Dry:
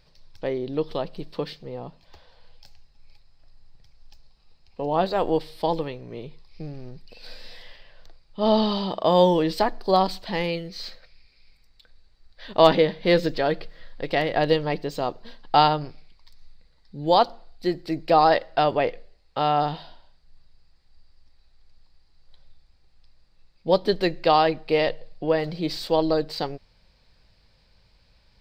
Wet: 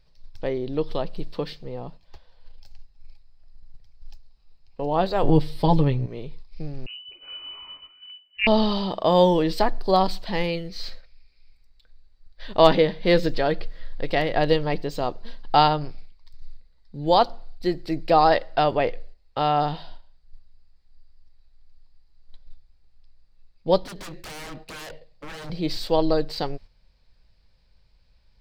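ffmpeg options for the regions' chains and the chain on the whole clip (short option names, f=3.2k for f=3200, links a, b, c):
-filter_complex "[0:a]asettb=1/sr,asplit=3[a][b][c];[a]atrim=end=5.234[d];[b]atrim=start=5.23:end=6.06,asetpts=PTS-STARTPTS,afade=t=in:d=0.004:c=qsin,afade=t=out:st=0.826:d=0.004:c=qsin,equalizer=f=100:w=0.5:g=13.5,aecho=1:1:7.1:0.63,atrim=end_sample=36603[e];[c]atrim=start=6.056[f];[d][e]acrossfade=d=0.004:c1=hsin:c2=qsin[g];[g][f]acrossfade=d=0.004:c1=qsin:c2=hsin,asettb=1/sr,asplit=3[h][i][j];[h]atrim=end=6.864[k];[i]atrim=start=6.86:end=8.47,asetpts=PTS-STARTPTS,afade=t=in:d=0.004:c=qsin,afade=t=out:st=1.606:d=0.004:c=qsin,tremolo=f=43:d=0.462,asplit=2[l][m];[m]adelay=14,volume=-8dB[n];[l][n]amix=inputs=2:normalize=0,atrim=end_sample=71001,lowpass=f=2.6k:t=q:w=0.5098,lowpass=f=2.6k:t=q:w=0.6013,lowpass=f=2.6k:t=q:w=0.9,lowpass=f=2.6k:t=q:w=2.563,afreqshift=-3000[o];[j]atrim=start=8.466[p];[k][o]acrossfade=d=0.004:c1=hsin:c2=qsin[q];[q][p]acrossfade=d=0.004:c1=qsin:c2=hsin,asettb=1/sr,asplit=3[r][s][t];[r]atrim=end=23.834[u];[s]atrim=start=23.83:end=25.5,asetpts=PTS-STARTPTS,afade=t=in:d=0.004:c=qsin,afade=t=out:st=1.666:d=0.004:c=qsin,highpass=f=77:p=1,acompressor=threshold=-27dB:ratio=3:attack=3.2:release=140:knee=1:detection=peak,aeval=exprs='0.0211*(abs(mod(val(0)/0.0211+3,4)-2)-1)':c=same[v];[t]atrim=start=25.496[w];[u][v]acrossfade=d=0.004:c1=hsin:c2=qsin[x];[x][w]acrossfade=d=0.004:c1=qsin:c2=hsin,agate=range=-7dB:threshold=-45dB:ratio=16:detection=peak,lowshelf=f=61:g=11.5"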